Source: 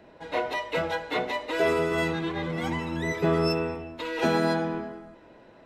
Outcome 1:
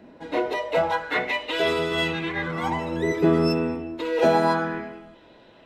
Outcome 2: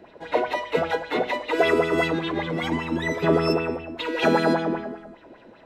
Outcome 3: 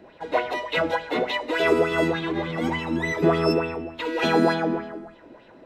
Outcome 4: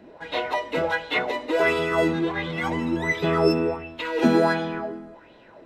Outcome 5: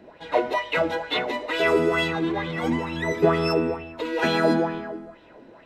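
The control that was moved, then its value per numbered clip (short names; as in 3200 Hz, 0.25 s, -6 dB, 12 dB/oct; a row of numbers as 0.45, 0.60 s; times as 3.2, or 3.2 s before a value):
LFO bell, rate: 0.28, 5.1, 3.4, 1.4, 2.2 Hz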